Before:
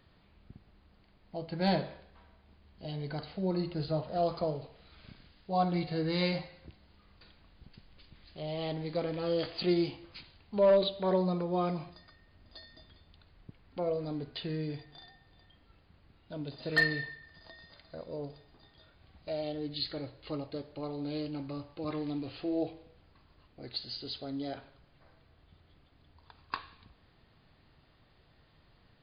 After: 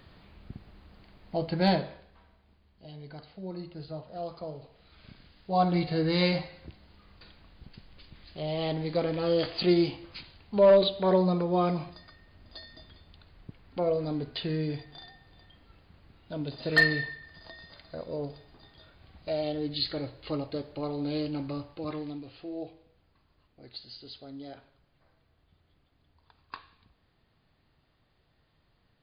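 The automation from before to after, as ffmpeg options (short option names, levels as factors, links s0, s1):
-af "volume=11.2,afade=t=out:st=1.42:d=0.36:silence=0.446684,afade=t=out:st=1.78:d=1.09:silence=0.354813,afade=t=in:st=4.43:d=1.33:silence=0.251189,afade=t=out:st=21.48:d=0.77:silence=0.298538"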